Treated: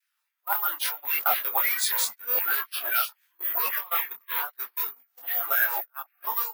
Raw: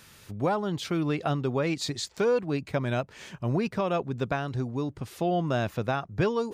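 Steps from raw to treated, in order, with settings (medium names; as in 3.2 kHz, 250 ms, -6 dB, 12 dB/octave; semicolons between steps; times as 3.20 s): coarse spectral quantiser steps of 30 dB; slow attack 243 ms; high-pass 480 Hz 12 dB/octave; vibrato 0.95 Hz 37 cents; ever faster or slower copies 145 ms, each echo -6 st, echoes 3, each echo -6 dB; gate -37 dBFS, range -35 dB; careless resampling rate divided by 3×, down none, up zero stuff; in parallel at 0 dB: peak limiter -15.5 dBFS, peak gain reduction 6.5 dB; on the sum: LFO high-pass saw down 3.8 Hz 890–2000 Hz; detune thickener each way 29 cents; trim +2.5 dB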